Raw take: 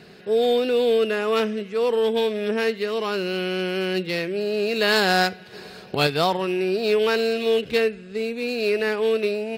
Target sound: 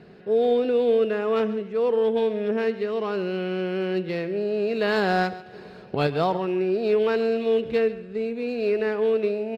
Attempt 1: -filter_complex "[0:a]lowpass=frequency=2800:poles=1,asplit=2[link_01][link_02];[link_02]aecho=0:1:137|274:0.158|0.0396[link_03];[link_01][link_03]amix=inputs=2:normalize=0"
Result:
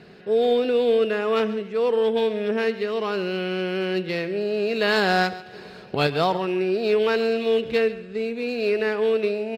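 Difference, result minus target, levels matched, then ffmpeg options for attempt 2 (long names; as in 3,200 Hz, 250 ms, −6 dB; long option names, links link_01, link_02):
2,000 Hz band +3.5 dB
-filter_complex "[0:a]lowpass=frequency=1000:poles=1,asplit=2[link_01][link_02];[link_02]aecho=0:1:137|274:0.158|0.0396[link_03];[link_01][link_03]amix=inputs=2:normalize=0"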